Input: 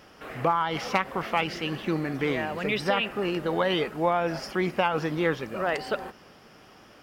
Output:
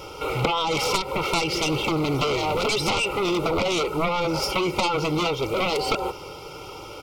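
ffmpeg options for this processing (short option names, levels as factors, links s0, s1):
-af "aecho=1:1:2.2:0.96,acompressor=threshold=0.0501:ratio=6,aeval=exprs='0.2*(cos(1*acos(clip(val(0)/0.2,-1,1)))-cos(1*PI/2))+0.0355*(cos(3*acos(clip(val(0)/0.2,-1,1)))-cos(3*PI/2))+0.0708*(cos(7*acos(clip(val(0)/0.2,-1,1)))-cos(7*PI/2))':c=same,asuperstop=centerf=1700:order=8:qfactor=2.7,volume=2"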